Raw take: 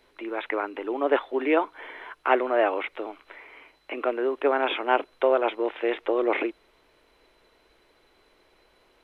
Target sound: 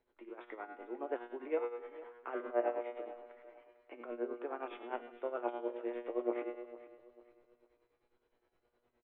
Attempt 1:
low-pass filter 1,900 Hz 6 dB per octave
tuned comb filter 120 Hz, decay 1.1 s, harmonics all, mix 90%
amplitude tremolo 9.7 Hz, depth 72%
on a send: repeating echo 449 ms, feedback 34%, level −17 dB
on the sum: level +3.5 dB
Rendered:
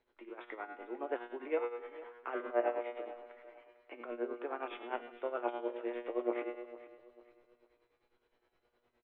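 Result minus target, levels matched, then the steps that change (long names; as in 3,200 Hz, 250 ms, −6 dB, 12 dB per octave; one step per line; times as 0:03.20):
2,000 Hz band +3.0 dB
change: low-pass filter 920 Hz 6 dB per octave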